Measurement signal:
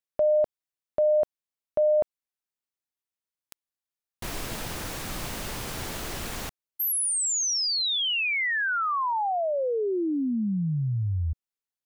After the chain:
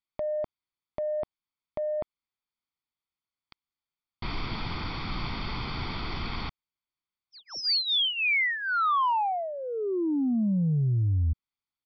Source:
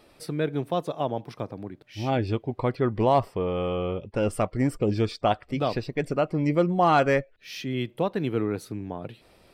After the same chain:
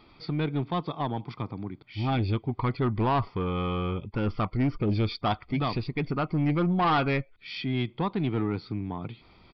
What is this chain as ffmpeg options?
-af "aecho=1:1:0.9:0.65,aresample=16000,asoftclip=type=tanh:threshold=-19dB,aresample=44100,aresample=11025,aresample=44100"

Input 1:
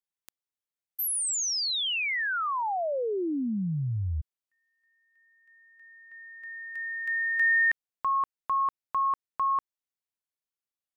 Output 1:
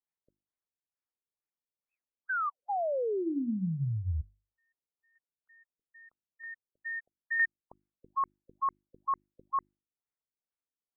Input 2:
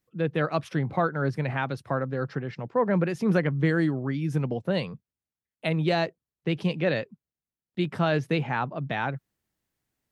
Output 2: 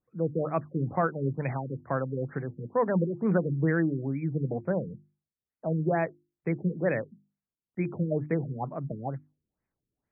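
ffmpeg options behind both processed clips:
-af "bandreject=f=50:t=h:w=6,bandreject=f=100:t=h:w=6,bandreject=f=150:t=h:w=6,bandreject=f=200:t=h:w=6,bandreject=f=250:t=h:w=6,bandreject=f=300:t=h:w=6,bandreject=f=350:t=h:w=6,afftfilt=real='re*lt(b*sr/1024,500*pow(2600/500,0.5+0.5*sin(2*PI*2.2*pts/sr)))':imag='im*lt(b*sr/1024,500*pow(2600/500,0.5+0.5*sin(2*PI*2.2*pts/sr)))':win_size=1024:overlap=0.75,volume=-1.5dB"

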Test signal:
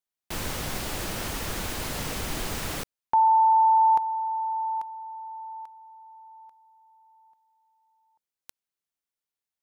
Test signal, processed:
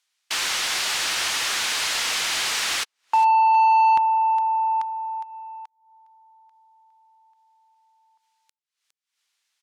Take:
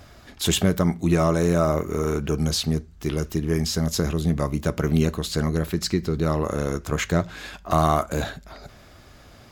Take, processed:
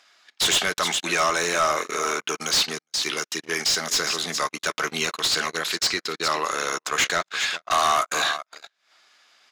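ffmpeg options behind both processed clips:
-filter_complex "[0:a]highpass=f=140:w=0.5412,highpass=f=140:w=1.3066,adynamicsmooth=sensitivity=1.5:basefreq=5.8k,aderivative,aecho=1:1:410:0.211,agate=range=-44dB:threshold=-56dB:ratio=16:release=31:detection=peak,equalizer=f=570:t=o:w=0.42:g=-3.5,acompressor=mode=upward:threshold=-55dB:ratio=2.5:attack=0.26:release=192:knee=2.83:detection=peak,asplit=2[a][b];[b]highpass=f=720:p=1,volume=29dB,asoftclip=type=tanh:threshold=-11.5dB[c];[a][c]amix=inputs=2:normalize=0,lowpass=f=3.4k:p=1,volume=-6dB,volume=3.5dB"

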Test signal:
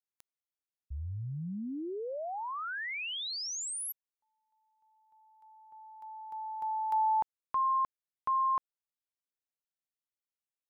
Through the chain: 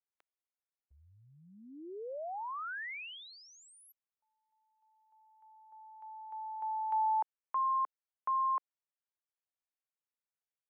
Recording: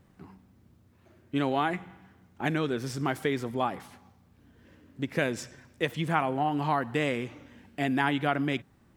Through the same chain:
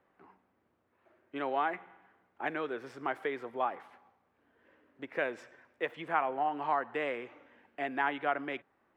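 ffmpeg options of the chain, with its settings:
-filter_complex "[0:a]acrossover=split=370 2600:gain=0.0708 1 0.0891[a][b][c];[a][b][c]amix=inputs=3:normalize=0,volume=-2dB"

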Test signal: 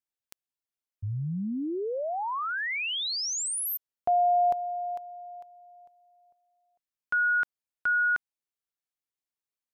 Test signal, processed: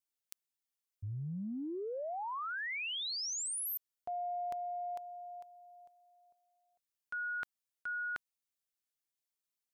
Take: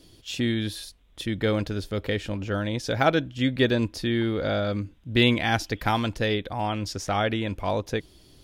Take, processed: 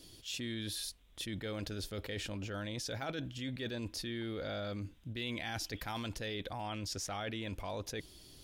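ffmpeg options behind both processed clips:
-af "highshelf=f=3k:g=8,areverse,acompressor=threshold=-33dB:ratio=6:attack=6.7:release=43:knee=1:detection=rms,areverse,volume=-5dB"

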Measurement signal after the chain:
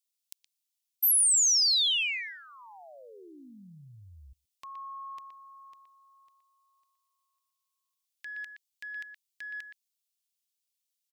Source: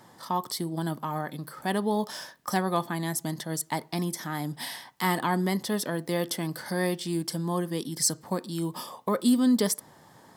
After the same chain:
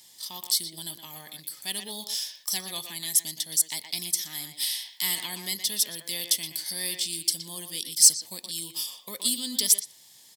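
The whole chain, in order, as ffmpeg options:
-filter_complex "[0:a]asplit=2[a][b];[b]adelay=120,highpass=300,lowpass=3.4k,asoftclip=type=hard:threshold=-18.5dB,volume=-7dB[c];[a][c]amix=inputs=2:normalize=0,aexciter=amount=13.2:drive=7.3:freq=2.2k,volume=-17dB"

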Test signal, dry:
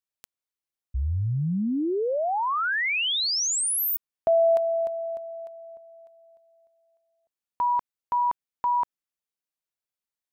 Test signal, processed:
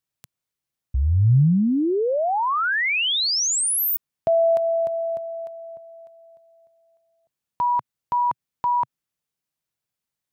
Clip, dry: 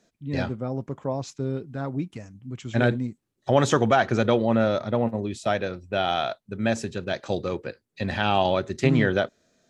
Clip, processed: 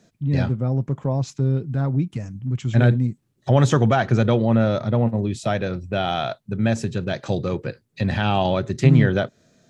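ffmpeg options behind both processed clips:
-filter_complex "[0:a]equalizer=f=130:w=1.1:g=11,asplit=2[a][b];[b]acompressor=threshold=-26dB:ratio=6:attack=0.15:release=198:knee=1:detection=rms,volume=3dB[c];[a][c]amix=inputs=2:normalize=0,volume=-2.5dB"

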